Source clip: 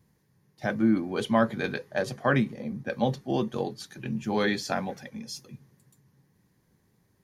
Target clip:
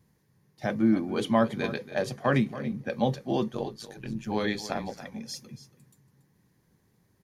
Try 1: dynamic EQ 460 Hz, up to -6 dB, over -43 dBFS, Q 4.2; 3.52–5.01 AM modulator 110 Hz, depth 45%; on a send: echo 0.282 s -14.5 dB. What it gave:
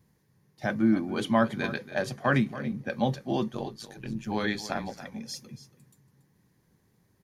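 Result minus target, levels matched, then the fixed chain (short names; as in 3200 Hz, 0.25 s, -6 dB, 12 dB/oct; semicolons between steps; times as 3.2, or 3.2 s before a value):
2000 Hz band +3.5 dB
dynamic EQ 1500 Hz, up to -6 dB, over -43 dBFS, Q 4.2; 3.52–5.01 AM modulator 110 Hz, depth 45%; on a send: echo 0.282 s -14.5 dB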